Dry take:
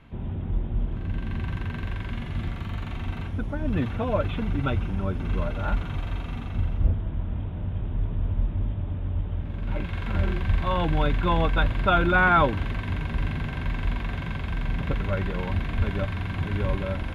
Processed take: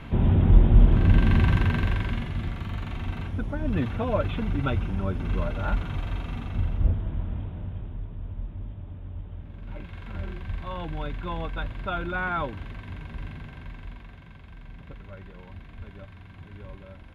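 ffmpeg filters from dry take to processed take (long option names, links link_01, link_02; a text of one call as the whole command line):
ffmpeg -i in.wav -af "volume=11.5dB,afade=type=out:start_time=1.12:duration=1.23:silence=0.251189,afade=type=out:start_time=7.16:duration=0.9:silence=0.354813,afade=type=out:start_time=13.25:duration=0.94:silence=0.446684" out.wav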